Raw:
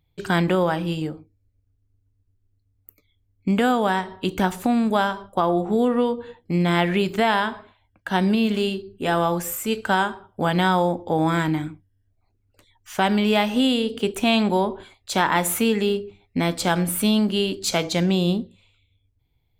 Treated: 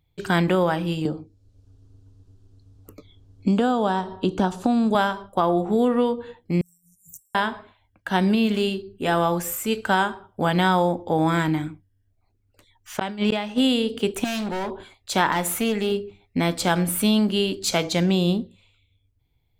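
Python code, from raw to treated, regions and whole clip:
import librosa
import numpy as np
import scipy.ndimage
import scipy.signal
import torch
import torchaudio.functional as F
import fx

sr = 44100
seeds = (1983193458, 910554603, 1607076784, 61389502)

y = fx.chain(x, sr, fx.lowpass(hz=6400.0, slope=12),
    fx.peak_eq(hz=2100.0, db=-15.0, octaves=0.64),
    fx.band_squash(depth_pct=70), at=(1.05, 4.95))
y = fx.chain(y, sr, fx.pre_emphasis(coefficient=0.9),
    fx.over_compress(threshold_db=-46.0, ratio=-1.0),
    fx.brickwall_bandstop(low_hz=160.0, high_hz=5400.0), at=(6.61, 7.35))
y = fx.chain(y, sr, fx.lowpass(hz=8400.0, slope=12),
    fx.gate_flip(shuts_db=-12.0, range_db=-34),
    fx.sustainer(db_per_s=70.0), at=(12.97, 13.58))
y = fx.chain(y, sr, fx.lowpass(hz=7300.0, slope=12),
    fx.low_shelf(hz=280.0, db=-6.0),
    fx.clip_hard(threshold_db=-25.0), at=(14.24, 14.71))
y = fx.chain(y, sr, fx.tube_stage(drive_db=10.0, bias=0.5),
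    fx.clip_hard(threshold_db=-16.0), at=(15.32, 15.92))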